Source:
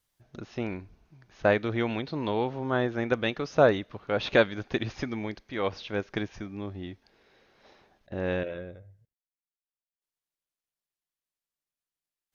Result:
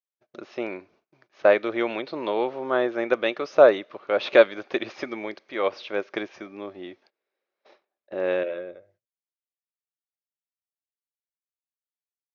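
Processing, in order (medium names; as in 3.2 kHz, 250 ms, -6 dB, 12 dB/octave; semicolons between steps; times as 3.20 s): gate -56 dBFS, range -26 dB; cabinet simulation 340–6000 Hz, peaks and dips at 360 Hz +6 dB, 580 Hz +8 dB, 1.2 kHz +5 dB, 2.3 kHz +4 dB; trim +1 dB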